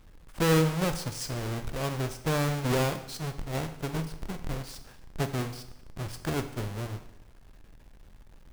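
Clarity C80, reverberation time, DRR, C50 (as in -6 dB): 13.5 dB, 0.90 s, 8.0 dB, 11.0 dB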